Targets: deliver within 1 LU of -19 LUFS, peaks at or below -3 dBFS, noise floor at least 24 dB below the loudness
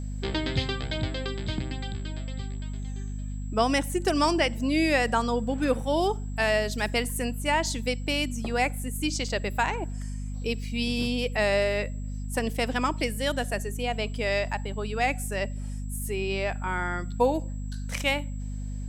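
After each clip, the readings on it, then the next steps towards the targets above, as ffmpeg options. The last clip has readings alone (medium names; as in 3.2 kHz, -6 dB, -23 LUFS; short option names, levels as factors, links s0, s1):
hum 50 Hz; highest harmonic 250 Hz; hum level -31 dBFS; steady tone 7.7 kHz; tone level -54 dBFS; loudness -28.0 LUFS; peak level -9.0 dBFS; loudness target -19.0 LUFS
-> -af "bandreject=f=50:t=h:w=6,bandreject=f=100:t=h:w=6,bandreject=f=150:t=h:w=6,bandreject=f=200:t=h:w=6,bandreject=f=250:t=h:w=6"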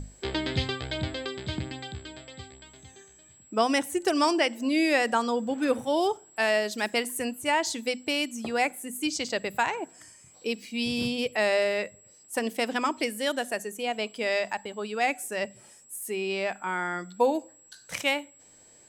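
hum not found; steady tone 7.7 kHz; tone level -54 dBFS
-> -af "bandreject=f=7700:w=30"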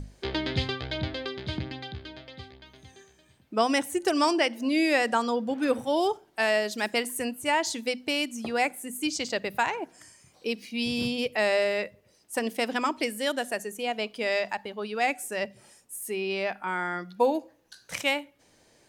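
steady tone not found; loudness -28.5 LUFS; peak level -9.5 dBFS; loudness target -19.0 LUFS
-> -af "volume=2.99,alimiter=limit=0.708:level=0:latency=1"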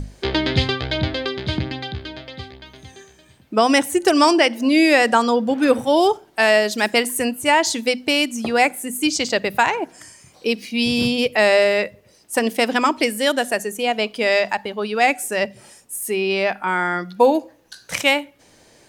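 loudness -19.0 LUFS; peak level -3.0 dBFS; noise floor -53 dBFS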